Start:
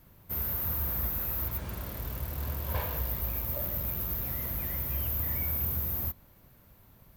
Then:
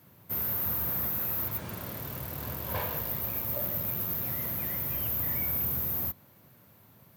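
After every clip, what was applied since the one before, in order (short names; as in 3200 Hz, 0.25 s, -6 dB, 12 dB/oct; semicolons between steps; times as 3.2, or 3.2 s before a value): HPF 100 Hz 24 dB/oct; gain +2 dB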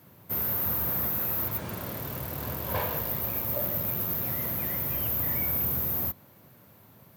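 bell 490 Hz +2.5 dB 2.6 oct; gain +2 dB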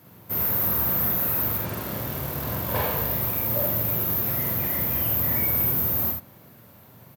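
early reflections 44 ms -3.5 dB, 79 ms -5 dB; gain +2.5 dB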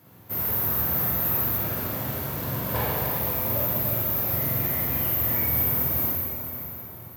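plate-style reverb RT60 4.3 s, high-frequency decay 0.8×, DRR 0.5 dB; gain -3 dB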